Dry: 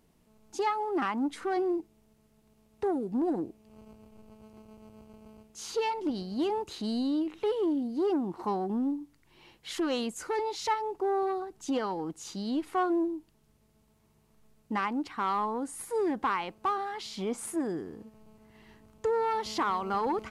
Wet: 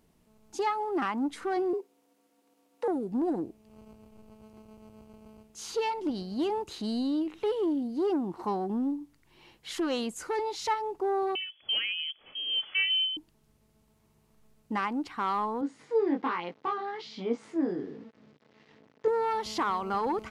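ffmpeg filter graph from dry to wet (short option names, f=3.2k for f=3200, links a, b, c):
-filter_complex "[0:a]asettb=1/sr,asplit=3[a][b][c];[a]atrim=end=1.734[d];[b]atrim=start=1.73:end=2.88,asetpts=PTS-STARTPTS,afade=t=in:d=0.004:c=qsin,afade=t=out:st=1.146:d=0.004:c=qsin,highpass=250,afreqshift=65[e];[c]atrim=start=2.876[f];[d][e]acrossfade=d=0.004:c1=hsin:c2=qsin[g];[g][f]acrossfade=d=0.004:c1=qsin:c2=hsin,asettb=1/sr,asplit=3[h][i][j];[h]atrim=end=11.354[k];[i]atrim=start=11.35:end=13.17,asetpts=PTS-STARTPTS,afade=t=in:d=0.004:c=qsin,afade=t=out:st=1.816:d=0.004:c=qsin,lowpass=f=2.9k:t=q:w=0.5098,lowpass=f=2.9k:t=q:w=0.6013,lowpass=f=2.9k:t=q:w=0.9,lowpass=f=2.9k:t=q:w=2.563,afreqshift=-3400,aecho=1:1:908:0.0794,atrim=end_sample=80262[l];[j]atrim=start=13.166[m];[k][l]acrossfade=d=0.004:c1=hsin:c2=qsin[n];[n][m]acrossfade=d=0.004:c1=qsin:c2=hsin,asettb=1/sr,asplit=3[o][p][q];[o]atrim=end=15.614[r];[p]atrim=start=15.61:end=19.08,asetpts=PTS-STARTPTS,afade=t=in:d=0.004:c=qsin,afade=t=out:st=3.466:d=0.004:c=qsin,flanger=delay=17:depth=5.4:speed=1.2,aeval=exprs='val(0)*gte(abs(val(0)),0.00168)':c=same,highpass=140,equalizer=f=140:t=q:w=4:g=7,equalizer=f=270:t=q:w=4:g=8,equalizer=f=470:t=q:w=4:g=7,equalizer=f=2k:t=q:w=4:g=3,lowpass=f=5.2k:w=0.5412,lowpass=f=5.2k:w=1.3066[s];[q]atrim=start=19.076[t];[r][s]acrossfade=d=0.004:c1=hsin:c2=qsin[u];[u][t]acrossfade=d=0.004:c1=qsin:c2=hsin"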